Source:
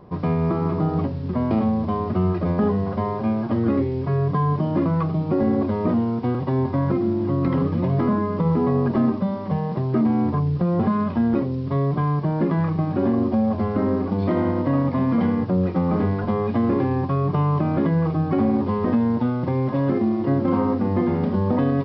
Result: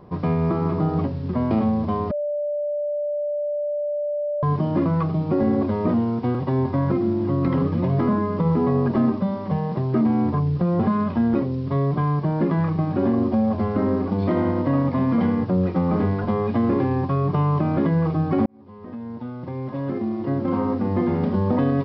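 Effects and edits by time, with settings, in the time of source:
0:02.11–0:04.43: beep over 588 Hz −22 dBFS
0:18.46–0:21.23: fade in

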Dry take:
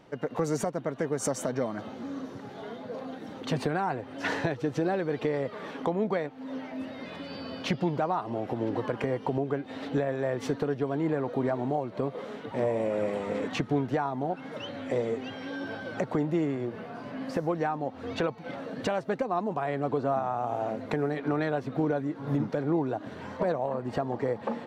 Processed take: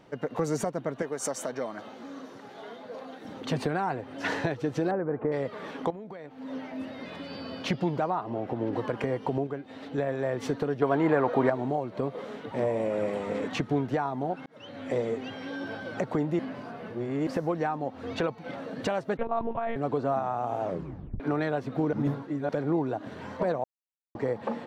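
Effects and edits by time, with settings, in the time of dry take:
0:01.02–0:03.25: high-pass filter 470 Hz 6 dB per octave
0:04.91–0:05.32: low-pass filter 1,500 Hz 24 dB per octave
0:05.90–0:06.42: downward compressor 16 to 1, threshold −37 dBFS
0:08.10–0:08.73: high-shelf EQ 4,700 Hz −11.5 dB
0:09.47–0:09.98: clip gain −5 dB
0:10.82–0:11.50: parametric band 1,200 Hz +10.5 dB 2.9 octaves
0:14.46–0:14.90: fade in
0:16.39–0:17.27: reverse
0:19.17–0:19.76: one-pitch LPC vocoder at 8 kHz 230 Hz
0:20.63: tape stop 0.57 s
0:21.93–0:22.49: reverse
0:23.64–0:24.15: silence

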